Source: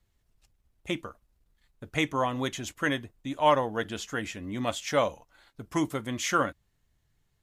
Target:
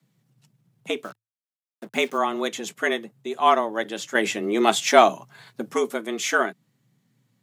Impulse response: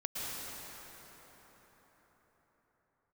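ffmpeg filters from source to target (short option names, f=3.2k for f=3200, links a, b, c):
-filter_complex "[0:a]asettb=1/sr,asplit=3[a][b][c];[a]atrim=end=1.034[d];[b]atrim=start=1.03:end=2.18,asetpts=PTS-STARTPTS,afade=t=in:d=0.004:c=qsin,afade=t=out:st=1.146:d=0.004:c=qsin,acrusher=bits=7:mix=0:aa=0.5[e];[c]atrim=start=2.176[f];[d][e]acrossfade=d=0.004:c1=hsin:c2=qsin[g];[g][f]acrossfade=d=0.004:c1=qsin:c2=hsin,afreqshift=110,asettb=1/sr,asplit=3[h][i][j];[h]atrim=end=4.154[k];[i]atrim=start=4.15:end=5.72,asetpts=PTS-STARTPTS,afade=t=in:d=0.004:c=qsin,afade=t=out:st=1.566:d=0.004:c=qsin,acontrast=88[l];[j]atrim=start=5.716[m];[k][l]acrossfade=d=0.004:c1=hsin:c2=qsin[n];[n][m]acrossfade=d=0.004:c1=qsin:c2=hsin,volume=4dB"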